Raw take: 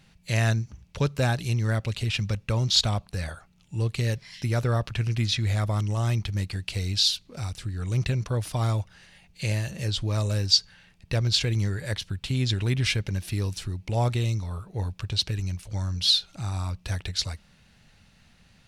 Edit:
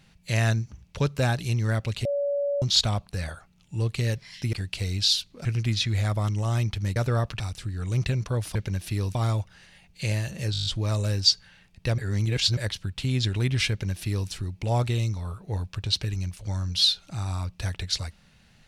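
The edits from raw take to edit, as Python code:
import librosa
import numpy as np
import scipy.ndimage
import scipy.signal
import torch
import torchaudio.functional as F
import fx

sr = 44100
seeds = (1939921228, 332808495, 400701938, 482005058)

y = fx.edit(x, sr, fx.bleep(start_s=2.05, length_s=0.57, hz=569.0, db=-23.0),
    fx.swap(start_s=4.53, length_s=0.44, other_s=6.48, other_length_s=0.92),
    fx.stutter(start_s=9.92, slice_s=0.02, count=8),
    fx.reverse_span(start_s=11.24, length_s=0.59),
    fx.duplicate(start_s=12.96, length_s=0.6, to_s=8.55), tone=tone)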